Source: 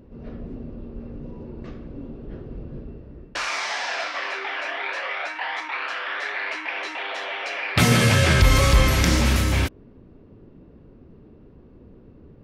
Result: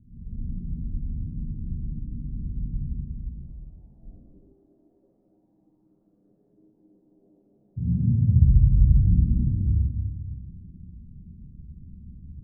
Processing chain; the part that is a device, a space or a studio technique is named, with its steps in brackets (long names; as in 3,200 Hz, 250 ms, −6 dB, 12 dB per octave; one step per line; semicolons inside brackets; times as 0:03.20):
club heard from the street (brickwall limiter −14 dBFS, peak gain reduction 8 dB; low-pass filter 180 Hz 24 dB per octave; convolution reverb RT60 1.5 s, pre-delay 56 ms, DRR −6 dB)
0:04.03–0:04.53: spectral tilt −3 dB per octave
level −2.5 dB